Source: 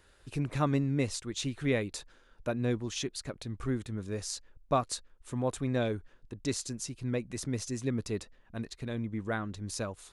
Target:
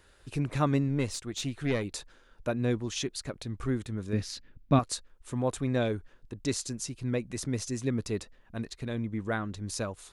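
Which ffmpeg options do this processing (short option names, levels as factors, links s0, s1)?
-filter_complex "[0:a]asettb=1/sr,asplit=3[s0][s1][s2];[s0]atrim=end=0.884[s3];[s1]atrim=start=0.88:end=1.85,asetpts=PTS-STARTPTS,afade=t=in:d=0.004:c=qsin,afade=t=out:st=0.966:d=0.004:c=qsin,aeval=exprs='(tanh(12.6*val(0)+0.4)-tanh(0.4))/12.6':c=same[s4];[s2]atrim=start=1.846[s5];[s3][s4]acrossfade=d=0.004:c1=hsin:c2=qsin[s6];[s6][s5]acrossfade=d=0.004:c1=qsin:c2=hsin,asettb=1/sr,asplit=3[s7][s8][s9];[s7]atrim=end=4.134[s10];[s8]atrim=start=4.13:end=4.79,asetpts=PTS-STARTPTS,afade=t=in:d=0.004:c=qsin,afade=t=out:st=0.656:d=0.004:c=qsin,equalizer=f=125:t=o:w=1:g=8,equalizer=f=250:t=o:w=1:g=10,equalizer=f=500:t=o:w=1:g=-4,equalizer=f=1000:t=o:w=1:g=-4,equalizer=f=2000:t=o:w=1:g=4,equalizer=f=4000:t=o:w=1:g=3,equalizer=f=8000:t=o:w=1:g=-12[s11];[s9]atrim=start=4.786[s12];[s10][s11]acrossfade=d=0.004:c1=hsin:c2=qsin[s13];[s13][s12]acrossfade=d=0.004:c1=qsin:c2=hsin,volume=1.26"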